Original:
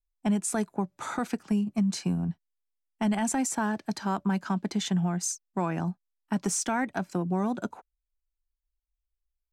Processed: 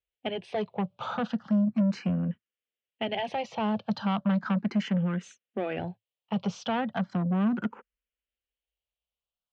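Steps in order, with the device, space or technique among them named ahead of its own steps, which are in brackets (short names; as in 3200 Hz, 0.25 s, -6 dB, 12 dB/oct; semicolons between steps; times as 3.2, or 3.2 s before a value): barber-pole phaser into a guitar amplifier (endless phaser +0.36 Hz; soft clip -29 dBFS, distortion -11 dB; speaker cabinet 97–3700 Hz, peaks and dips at 110 Hz +7 dB, 220 Hz +5 dB, 310 Hz -9 dB, 500 Hz +6 dB, 950 Hz -3 dB, 3000 Hz +7 dB); gain +5.5 dB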